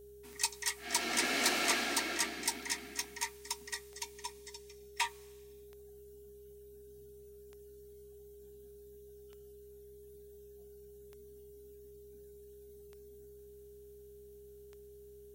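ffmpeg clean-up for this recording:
-af "adeclick=t=4,bandreject=f=64.6:t=h:w=4,bandreject=f=129.2:t=h:w=4,bandreject=f=193.8:t=h:w=4,bandreject=f=258.4:t=h:w=4,bandreject=f=410:w=30"

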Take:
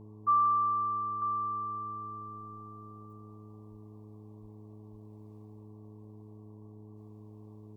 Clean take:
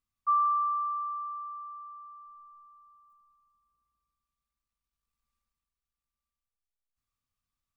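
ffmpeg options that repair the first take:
-filter_complex "[0:a]bandreject=f=106.4:t=h:w=4,bandreject=f=212.8:t=h:w=4,bandreject=f=319.2:t=h:w=4,bandreject=f=425.6:t=h:w=4,asplit=3[s0][s1][s2];[s0]afade=t=out:st=3.7:d=0.02[s3];[s1]highpass=f=140:w=0.5412,highpass=f=140:w=1.3066,afade=t=in:st=3.7:d=0.02,afade=t=out:st=3.82:d=0.02[s4];[s2]afade=t=in:st=3.82:d=0.02[s5];[s3][s4][s5]amix=inputs=3:normalize=0,asplit=3[s6][s7][s8];[s6]afade=t=out:st=4.41:d=0.02[s9];[s7]highpass=f=140:w=0.5412,highpass=f=140:w=1.3066,afade=t=in:st=4.41:d=0.02,afade=t=out:st=4.53:d=0.02[s10];[s8]afade=t=in:st=4.53:d=0.02[s11];[s9][s10][s11]amix=inputs=3:normalize=0,asplit=3[s12][s13][s14];[s12]afade=t=out:st=4.91:d=0.02[s15];[s13]highpass=f=140:w=0.5412,highpass=f=140:w=1.3066,afade=t=in:st=4.91:d=0.02,afade=t=out:st=5.03:d=0.02[s16];[s14]afade=t=in:st=5.03:d=0.02[s17];[s15][s16][s17]amix=inputs=3:normalize=0,afwtdn=0.002,asetnsamples=n=441:p=0,asendcmd='1.22 volume volume -6dB',volume=1"

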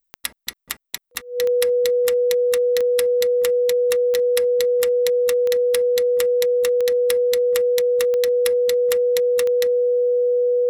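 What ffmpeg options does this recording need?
-af "adeclick=t=4,bandreject=f=490:w=30"

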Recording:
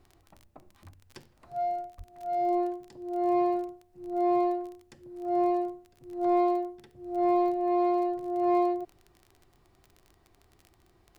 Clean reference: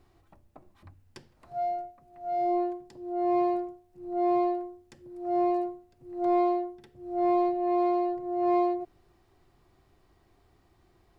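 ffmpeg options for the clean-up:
-filter_complex "[0:a]adeclick=t=4,asplit=3[s0][s1][s2];[s0]afade=t=out:st=1.97:d=0.02[s3];[s1]highpass=f=140:w=0.5412,highpass=f=140:w=1.3066,afade=t=in:st=1.97:d=0.02,afade=t=out:st=2.09:d=0.02[s4];[s2]afade=t=in:st=2.09:d=0.02[s5];[s3][s4][s5]amix=inputs=3:normalize=0"

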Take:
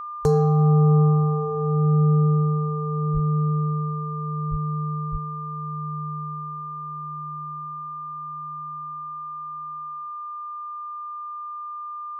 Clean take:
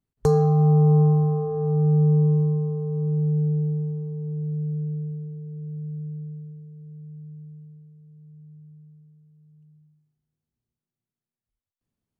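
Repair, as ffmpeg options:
-filter_complex "[0:a]bandreject=f=1200:w=30,asplit=3[s0][s1][s2];[s0]afade=t=out:st=3.13:d=0.02[s3];[s1]highpass=f=140:w=0.5412,highpass=f=140:w=1.3066,afade=t=in:st=3.13:d=0.02,afade=t=out:st=3.25:d=0.02[s4];[s2]afade=t=in:st=3.25:d=0.02[s5];[s3][s4][s5]amix=inputs=3:normalize=0,asplit=3[s6][s7][s8];[s6]afade=t=out:st=4.5:d=0.02[s9];[s7]highpass=f=140:w=0.5412,highpass=f=140:w=1.3066,afade=t=in:st=4.5:d=0.02,afade=t=out:st=4.62:d=0.02[s10];[s8]afade=t=in:st=4.62:d=0.02[s11];[s9][s10][s11]amix=inputs=3:normalize=0,asplit=3[s12][s13][s14];[s12]afade=t=out:st=5.11:d=0.02[s15];[s13]highpass=f=140:w=0.5412,highpass=f=140:w=1.3066,afade=t=in:st=5.11:d=0.02,afade=t=out:st=5.23:d=0.02[s16];[s14]afade=t=in:st=5.23:d=0.02[s17];[s15][s16][s17]amix=inputs=3:normalize=0"

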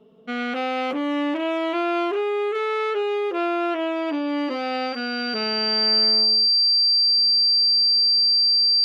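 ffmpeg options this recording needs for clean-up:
-af "bandreject=f=4700:w=30"

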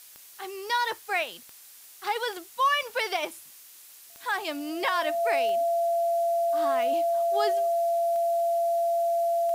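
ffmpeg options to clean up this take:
-af "adeclick=t=4,bandreject=f=680:w=30,afftdn=nr=24:nf=-50"

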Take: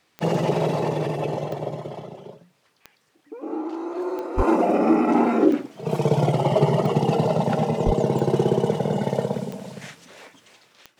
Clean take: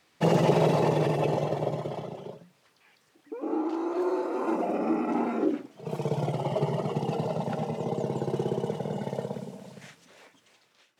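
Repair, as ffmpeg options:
-filter_complex "[0:a]adeclick=t=4,asplit=3[s0][s1][s2];[s0]afade=t=out:st=4.36:d=0.02[s3];[s1]highpass=f=140:w=0.5412,highpass=f=140:w=1.3066,afade=t=in:st=4.36:d=0.02,afade=t=out:st=4.48:d=0.02[s4];[s2]afade=t=in:st=4.48:d=0.02[s5];[s3][s4][s5]amix=inputs=3:normalize=0,asplit=3[s6][s7][s8];[s6]afade=t=out:st=7.85:d=0.02[s9];[s7]highpass=f=140:w=0.5412,highpass=f=140:w=1.3066,afade=t=in:st=7.85:d=0.02,afade=t=out:st=7.97:d=0.02[s10];[s8]afade=t=in:st=7.97:d=0.02[s11];[s9][s10][s11]amix=inputs=3:normalize=0,asetnsamples=n=441:p=0,asendcmd='4.38 volume volume -9dB',volume=1"

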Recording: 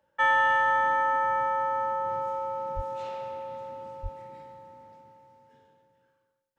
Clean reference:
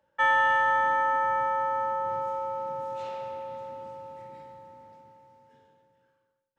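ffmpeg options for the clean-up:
-filter_complex "[0:a]asplit=3[s0][s1][s2];[s0]afade=t=out:st=2.75:d=0.02[s3];[s1]highpass=f=140:w=0.5412,highpass=f=140:w=1.3066,afade=t=in:st=2.75:d=0.02,afade=t=out:st=2.87:d=0.02[s4];[s2]afade=t=in:st=2.87:d=0.02[s5];[s3][s4][s5]amix=inputs=3:normalize=0,asplit=3[s6][s7][s8];[s6]afade=t=out:st=4.02:d=0.02[s9];[s7]highpass=f=140:w=0.5412,highpass=f=140:w=1.3066,afade=t=in:st=4.02:d=0.02,afade=t=out:st=4.14:d=0.02[s10];[s8]afade=t=in:st=4.14:d=0.02[s11];[s9][s10][s11]amix=inputs=3:normalize=0"

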